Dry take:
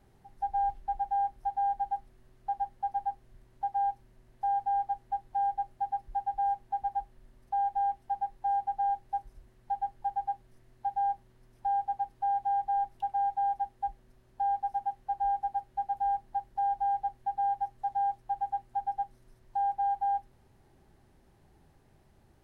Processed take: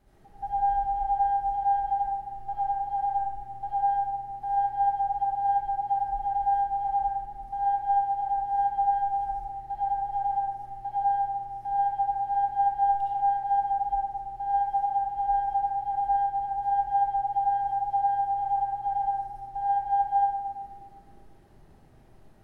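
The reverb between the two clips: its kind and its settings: algorithmic reverb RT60 1.6 s, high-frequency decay 0.3×, pre-delay 30 ms, DRR -8 dB; trim -3 dB

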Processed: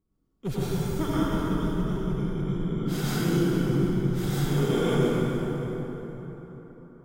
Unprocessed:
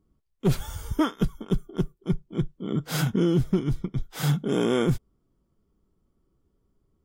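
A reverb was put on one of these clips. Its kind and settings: plate-style reverb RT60 4.3 s, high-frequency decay 0.55×, pre-delay 80 ms, DRR -10 dB; trim -9.5 dB

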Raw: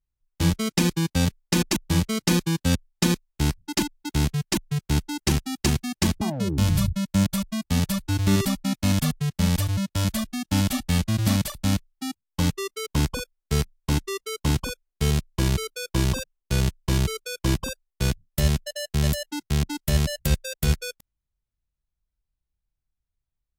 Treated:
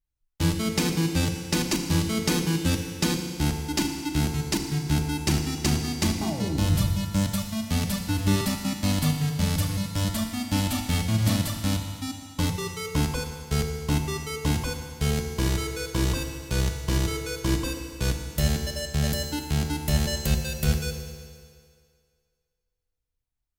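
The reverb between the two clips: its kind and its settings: FDN reverb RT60 2.1 s, low-frequency decay 0.8×, high-frequency decay 0.95×, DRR 3 dB; trim -2.5 dB

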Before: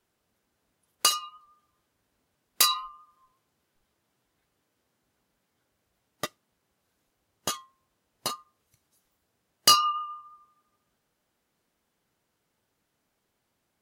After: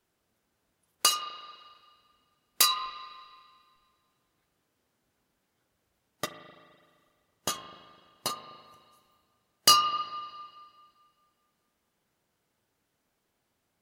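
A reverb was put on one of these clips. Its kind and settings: spring tank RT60 1.9 s, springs 36/42 ms, chirp 20 ms, DRR 9 dB; trim -1 dB

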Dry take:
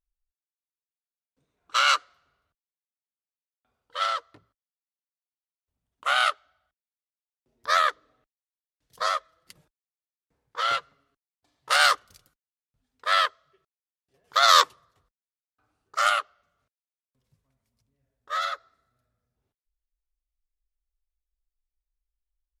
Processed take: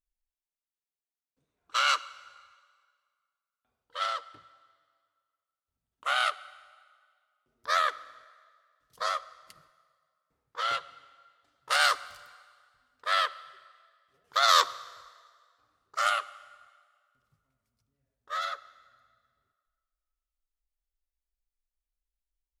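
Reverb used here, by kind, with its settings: plate-style reverb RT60 1.9 s, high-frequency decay 0.85×, DRR 17 dB; trim -4.5 dB

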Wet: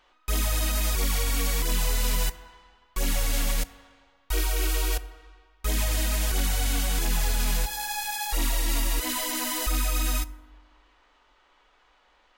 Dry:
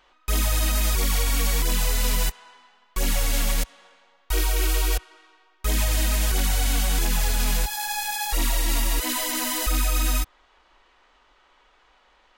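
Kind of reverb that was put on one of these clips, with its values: FDN reverb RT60 1.4 s, low-frequency decay 1×, high-frequency decay 0.35×, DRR 14 dB; trim -3 dB

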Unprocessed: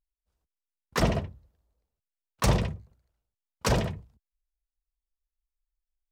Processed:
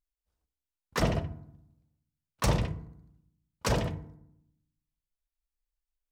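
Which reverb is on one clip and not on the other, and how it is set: FDN reverb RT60 0.75 s, low-frequency decay 1.45×, high-frequency decay 0.5×, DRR 11.5 dB; trim -3 dB

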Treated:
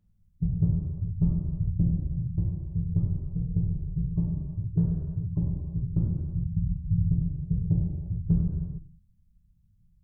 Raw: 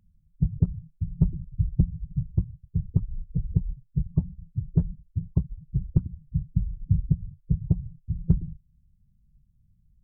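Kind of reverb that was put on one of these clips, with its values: gated-style reverb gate 490 ms falling, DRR -5.5 dB; trim -7 dB

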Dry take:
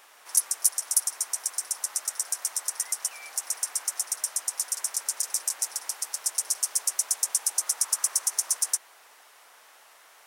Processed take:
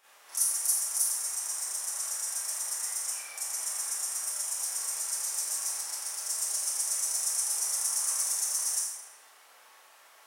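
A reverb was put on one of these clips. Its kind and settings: Schroeder reverb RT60 0.79 s, combs from 28 ms, DRR -10 dB; trim -12.5 dB

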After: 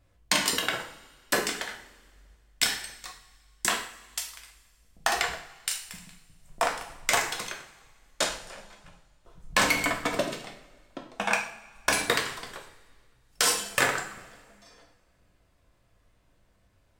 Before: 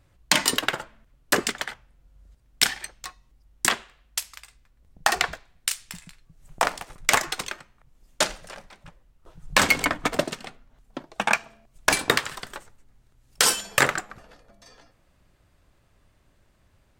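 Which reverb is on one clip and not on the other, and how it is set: two-slope reverb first 0.52 s, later 2 s, from -19 dB, DRR 0.5 dB; trim -6 dB

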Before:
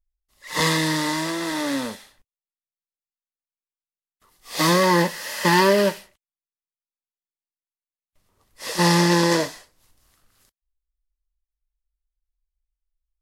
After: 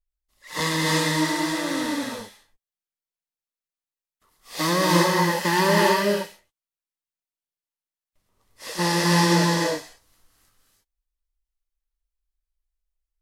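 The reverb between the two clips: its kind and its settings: gated-style reverb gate 360 ms rising, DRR -2.5 dB; trim -5 dB

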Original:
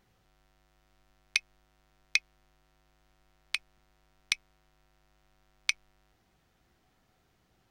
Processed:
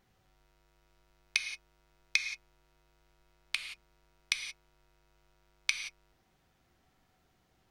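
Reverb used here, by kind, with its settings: gated-style reverb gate 200 ms flat, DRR 5.5 dB; trim -2 dB

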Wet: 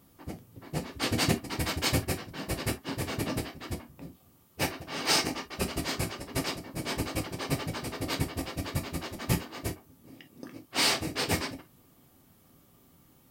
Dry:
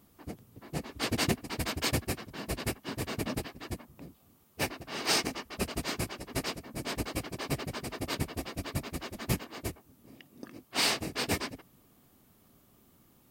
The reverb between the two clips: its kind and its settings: gated-style reverb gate 80 ms falling, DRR 5.5 dB; trim +1 dB

